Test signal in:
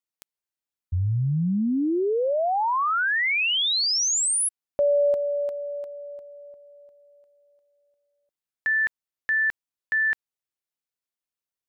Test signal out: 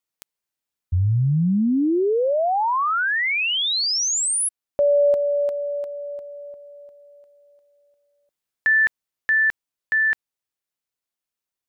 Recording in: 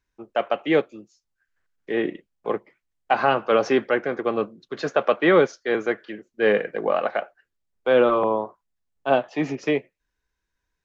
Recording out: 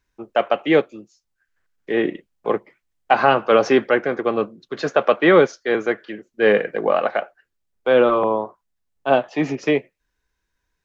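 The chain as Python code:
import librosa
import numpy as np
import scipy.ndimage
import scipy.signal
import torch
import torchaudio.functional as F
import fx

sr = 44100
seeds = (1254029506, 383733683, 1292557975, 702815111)

y = fx.rider(x, sr, range_db=4, speed_s=2.0)
y = y * 10.0 ** (3.0 / 20.0)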